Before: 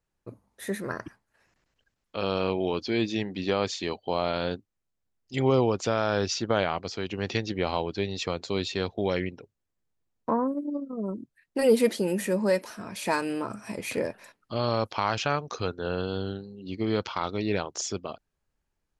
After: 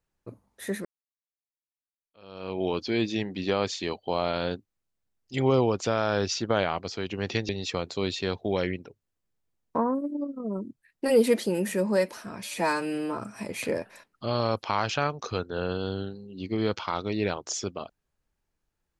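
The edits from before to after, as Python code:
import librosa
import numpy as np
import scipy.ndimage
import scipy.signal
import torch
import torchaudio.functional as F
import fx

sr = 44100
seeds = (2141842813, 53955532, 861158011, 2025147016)

y = fx.edit(x, sr, fx.fade_in_span(start_s=0.85, length_s=1.77, curve='exp'),
    fx.cut(start_s=7.49, length_s=0.53),
    fx.stretch_span(start_s=12.97, length_s=0.49, factor=1.5), tone=tone)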